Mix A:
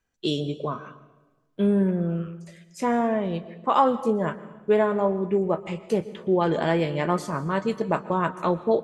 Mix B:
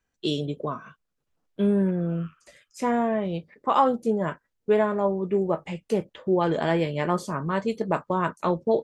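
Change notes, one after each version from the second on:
first voice: send off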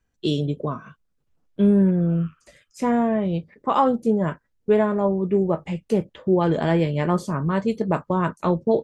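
master: add bass shelf 260 Hz +9.5 dB

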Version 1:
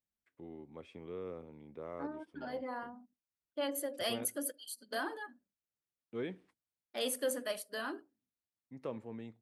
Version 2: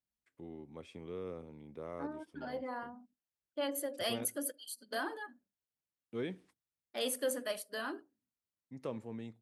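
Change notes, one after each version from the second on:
first voice: add tone controls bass +3 dB, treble +9 dB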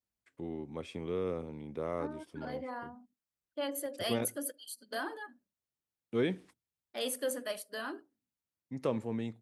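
first voice +8.0 dB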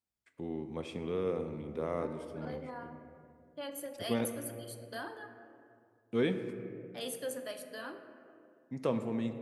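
second voice -5.5 dB; reverb: on, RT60 2.2 s

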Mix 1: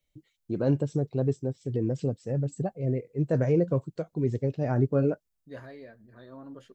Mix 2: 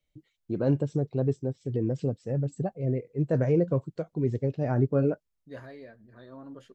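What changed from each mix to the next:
first voice: add treble shelf 6.5 kHz -8.5 dB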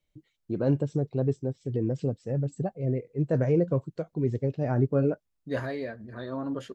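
second voice +12.0 dB

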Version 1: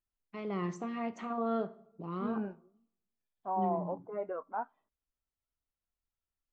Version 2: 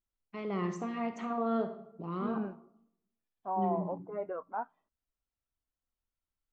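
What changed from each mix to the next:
first voice: send +10.0 dB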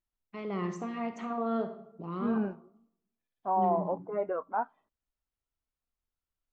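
second voice +5.5 dB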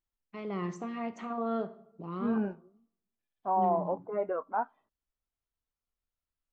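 first voice: send -7.0 dB

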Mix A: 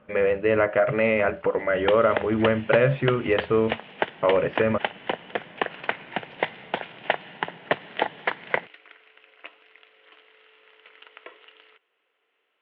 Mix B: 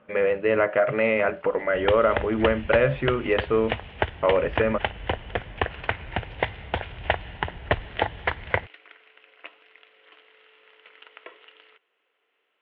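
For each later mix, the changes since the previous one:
speech: add bass shelf 130 Hz -7.5 dB; second sound: remove steep high-pass 160 Hz 36 dB/octave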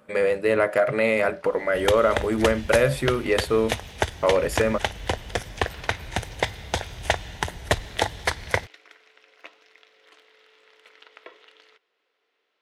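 first sound: add distance through air 250 m; master: remove elliptic low-pass 3 kHz, stop band 60 dB

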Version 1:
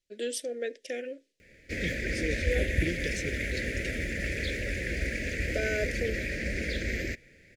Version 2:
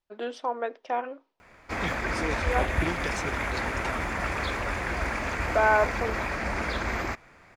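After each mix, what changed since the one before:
first voice: add distance through air 230 m; master: remove elliptic band-stop 540–1800 Hz, stop band 80 dB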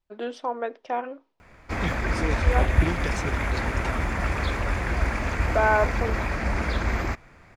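master: add bass shelf 200 Hz +9.5 dB

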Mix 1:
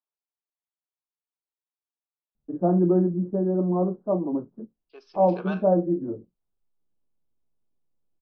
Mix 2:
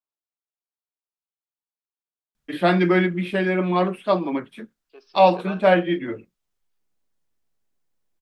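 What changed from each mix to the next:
first voice: remove Gaussian low-pass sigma 12 samples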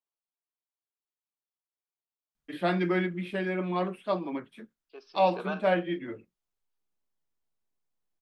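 first voice -9.0 dB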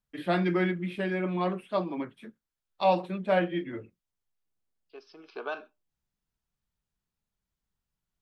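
first voice: entry -2.35 s; master: add peaking EQ 88 Hz +7.5 dB 1.1 oct

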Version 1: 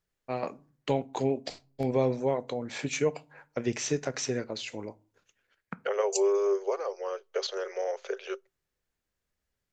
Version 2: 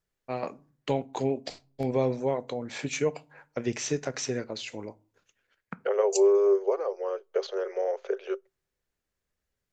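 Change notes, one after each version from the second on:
second voice: add tilt EQ -3.5 dB/octave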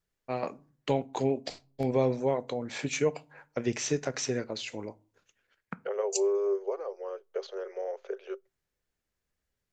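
second voice -6.5 dB

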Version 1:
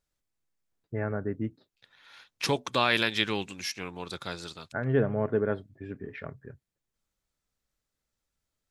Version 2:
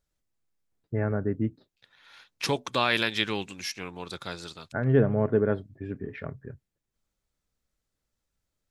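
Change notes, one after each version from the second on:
first voice: add bass shelf 480 Hz +5.5 dB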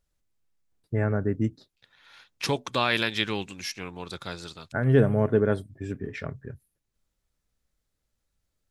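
first voice: remove distance through air 390 m; master: add bass shelf 110 Hz +5.5 dB

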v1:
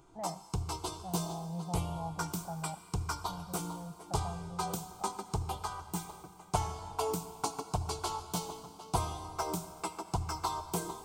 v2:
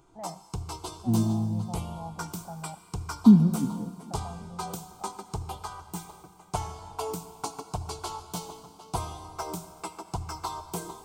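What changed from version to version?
second voice: unmuted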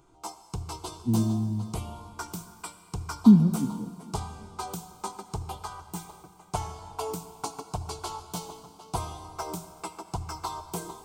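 first voice: muted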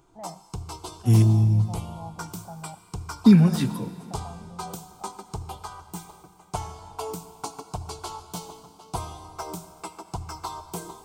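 first voice: unmuted; second voice: remove band-pass filter 230 Hz, Q 2.3

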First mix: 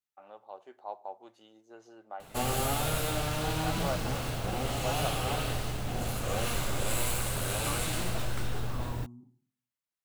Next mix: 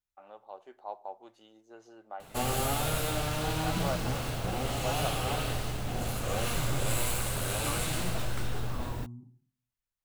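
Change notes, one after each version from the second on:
second voice: remove high-pass 190 Hz 12 dB/octave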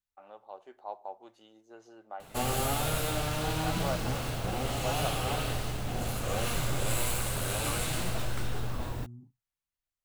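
second voice: send off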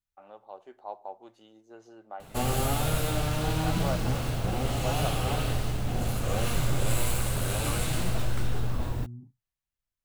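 master: add bass shelf 320 Hz +6 dB

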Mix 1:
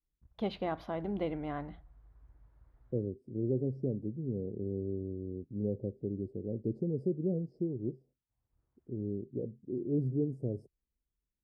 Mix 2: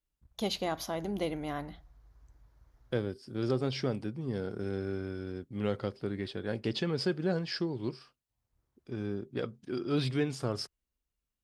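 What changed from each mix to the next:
second voice: remove inverse Chebyshev band-stop 1.2–3.5 kHz, stop band 60 dB; master: remove distance through air 470 m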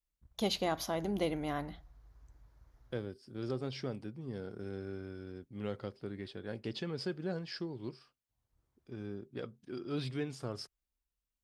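second voice -7.0 dB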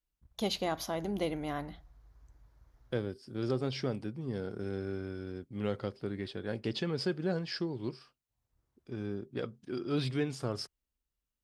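second voice +5.0 dB

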